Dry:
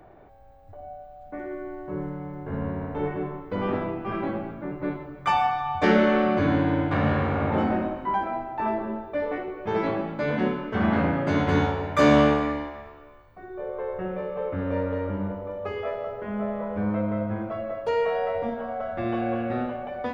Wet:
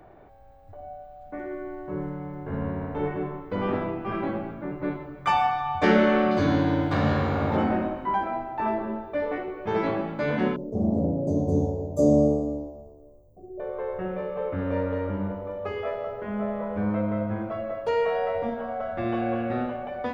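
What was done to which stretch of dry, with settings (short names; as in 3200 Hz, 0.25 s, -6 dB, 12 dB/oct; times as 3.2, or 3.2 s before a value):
6.31–7.57 resonant high shelf 3400 Hz +8 dB, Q 1.5
10.56–13.6 Chebyshev band-stop 590–6600 Hz, order 3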